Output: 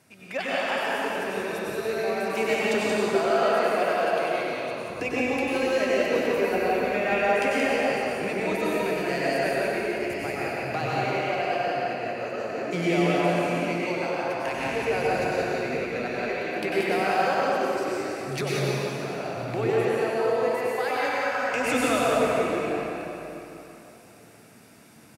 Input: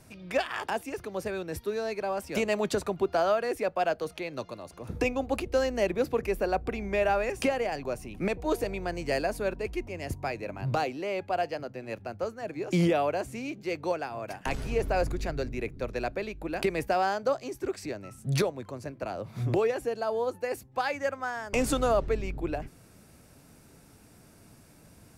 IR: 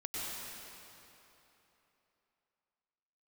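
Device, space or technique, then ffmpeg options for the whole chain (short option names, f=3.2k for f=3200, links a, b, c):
PA in a hall: -filter_complex "[0:a]highpass=150,equalizer=f=2.2k:t=o:w=1.5:g=5,aecho=1:1:177:0.531[a];[1:a]atrim=start_sample=2205[b];[a][b]afir=irnorm=-1:irlink=0"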